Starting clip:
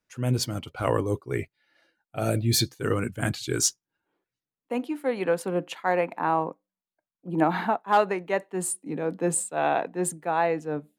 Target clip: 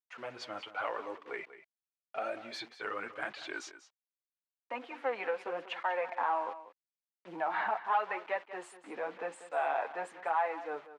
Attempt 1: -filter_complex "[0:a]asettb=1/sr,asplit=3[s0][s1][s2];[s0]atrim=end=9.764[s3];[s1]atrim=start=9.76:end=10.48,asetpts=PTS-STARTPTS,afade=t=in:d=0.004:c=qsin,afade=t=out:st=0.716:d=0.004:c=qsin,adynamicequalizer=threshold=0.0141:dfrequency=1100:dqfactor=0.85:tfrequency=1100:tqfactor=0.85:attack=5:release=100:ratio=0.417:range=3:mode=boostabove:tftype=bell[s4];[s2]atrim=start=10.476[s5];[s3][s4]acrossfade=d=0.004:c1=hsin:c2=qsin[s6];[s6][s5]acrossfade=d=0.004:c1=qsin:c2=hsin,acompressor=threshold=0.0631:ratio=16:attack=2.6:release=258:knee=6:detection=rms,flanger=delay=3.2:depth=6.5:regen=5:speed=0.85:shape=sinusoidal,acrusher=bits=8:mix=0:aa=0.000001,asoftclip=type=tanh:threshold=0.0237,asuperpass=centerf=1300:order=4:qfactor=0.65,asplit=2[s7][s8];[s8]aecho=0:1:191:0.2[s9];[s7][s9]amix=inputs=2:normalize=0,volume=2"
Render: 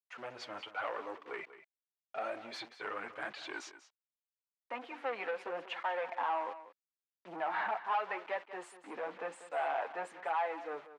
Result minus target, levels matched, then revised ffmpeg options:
saturation: distortion +10 dB
-filter_complex "[0:a]asettb=1/sr,asplit=3[s0][s1][s2];[s0]atrim=end=9.764[s3];[s1]atrim=start=9.76:end=10.48,asetpts=PTS-STARTPTS,afade=t=in:d=0.004:c=qsin,afade=t=out:st=0.716:d=0.004:c=qsin,adynamicequalizer=threshold=0.0141:dfrequency=1100:dqfactor=0.85:tfrequency=1100:tqfactor=0.85:attack=5:release=100:ratio=0.417:range=3:mode=boostabove:tftype=bell[s4];[s2]atrim=start=10.476[s5];[s3][s4]acrossfade=d=0.004:c1=hsin:c2=qsin[s6];[s6][s5]acrossfade=d=0.004:c1=qsin:c2=hsin,acompressor=threshold=0.0631:ratio=16:attack=2.6:release=258:knee=6:detection=rms,flanger=delay=3.2:depth=6.5:regen=5:speed=0.85:shape=sinusoidal,acrusher=bits=8:mix=0:aa=0.000001,asoftclip=type=tanh:threshold=0.0596,asuperpass=centerf=1300:order=4:qfactor=0.65,asplit=2[s7][s8];[s8]aecho=0:1:191:0.2[s9];[s7][s9]amix=inputs=2:normalize=0,volume=2"

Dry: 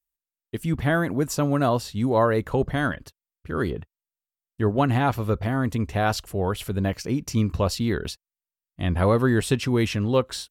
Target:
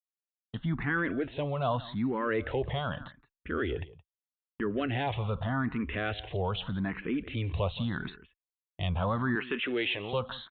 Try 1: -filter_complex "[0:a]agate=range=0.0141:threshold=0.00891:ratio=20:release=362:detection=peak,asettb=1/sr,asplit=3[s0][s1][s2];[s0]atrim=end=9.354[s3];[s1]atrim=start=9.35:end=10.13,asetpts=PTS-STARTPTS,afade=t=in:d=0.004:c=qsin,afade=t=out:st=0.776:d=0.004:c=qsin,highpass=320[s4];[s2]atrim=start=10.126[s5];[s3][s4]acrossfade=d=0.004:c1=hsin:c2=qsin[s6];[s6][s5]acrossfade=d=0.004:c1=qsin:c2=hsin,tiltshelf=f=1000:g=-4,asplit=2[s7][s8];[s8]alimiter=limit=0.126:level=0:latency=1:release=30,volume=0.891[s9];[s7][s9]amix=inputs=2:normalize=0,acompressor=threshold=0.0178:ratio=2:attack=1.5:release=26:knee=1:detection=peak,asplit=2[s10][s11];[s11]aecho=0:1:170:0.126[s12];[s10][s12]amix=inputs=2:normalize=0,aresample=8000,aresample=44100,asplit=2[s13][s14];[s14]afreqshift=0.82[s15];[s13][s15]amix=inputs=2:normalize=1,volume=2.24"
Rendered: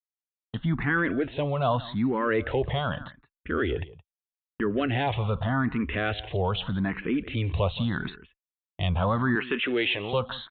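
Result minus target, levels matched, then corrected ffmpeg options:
compression: peak gain reduction -5 dB
-filter_complex "[0:a]agate=range=0.0141:threshold=0.00891:ratio=20:release=362:detection=peak,asettb=1/sr,asplit=3[s0][s1][s2];[s0]atrim=end=9.354[s3];[s1]atrim=start=9.35:end=10.13,asetpts=PTS-STARTPTS,afade=t=in:d=0.004:c=qsin,afade=t=out:st=0.776:d=0.004:c=qsin,highpass=320[s4];[s2]atrim=start=10.126[s5];[s3][s4]acrossfade=d=0.004:c1=hsin:c2=qsin[s6];[s6][s5]acrossfade=d=0.004:c1=qsin:c2=hsin,tiltshelf=f=1000:g=-4,asplit=2[s7][s8];[s8]alimiter=limit=0.126:level=0:latency=1:release=30,volume=0.891[s9];[s7][s9]amix=inputs=2:normalize=0,acompressor=threshold=0.00596:ratio=2:attack=1.5:release=26:knee=1:detection=peak,asplit=2[s10][s11];[s11]aecho=0:1:170:0.126[s12];[s10][s12]amix=inputs=2:normalize=0,aresample=8000,aresample=44100,asplit=2[s13][s14];[s14]afreqshift=0.82[s15];[s13][s15]amix=inputs=2:normalize=1,volume=2.24"

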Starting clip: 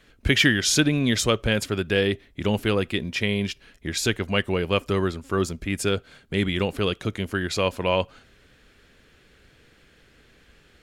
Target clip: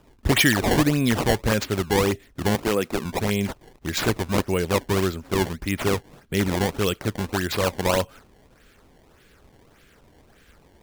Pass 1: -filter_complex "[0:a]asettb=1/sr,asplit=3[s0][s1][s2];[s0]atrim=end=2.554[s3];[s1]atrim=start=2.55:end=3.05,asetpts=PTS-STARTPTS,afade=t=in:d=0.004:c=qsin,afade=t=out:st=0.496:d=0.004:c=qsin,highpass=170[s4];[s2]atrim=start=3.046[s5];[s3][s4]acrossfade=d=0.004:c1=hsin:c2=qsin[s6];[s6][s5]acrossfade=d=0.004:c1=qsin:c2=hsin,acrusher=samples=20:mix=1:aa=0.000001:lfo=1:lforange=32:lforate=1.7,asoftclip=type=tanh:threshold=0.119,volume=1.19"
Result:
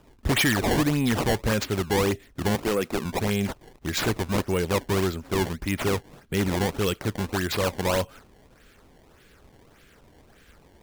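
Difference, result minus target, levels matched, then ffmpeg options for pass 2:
saturation: distortion +12 dB
-filter_complex "[0:a]asettb=1/sr,asplit=3[s0][s1][s2];[s0]atrim=end=2.554[s3];[s1]atrim=start=2.55:end=3.05,asetpts=PTS-STARTPTS,afade=t=in:d=0.004:c=qsin,afade=t=out:st=0.496:d=0.004:c=qsin,highpass=170[s4];[s2]atrim=start=3.046[s5];[s3][s4]acrossfade=d=0.004:c1=hsin:c2=qsin[s6];[s6][s5]acrossfade=d=0.004:c1=qsin:c2=hsin,acrusher=samples=20:mix=1:aa=0.000001:lfo=1:lforange=32:lforate=1.7,asoftclip=type=tanh:threshold=0.355,volume=1.19"

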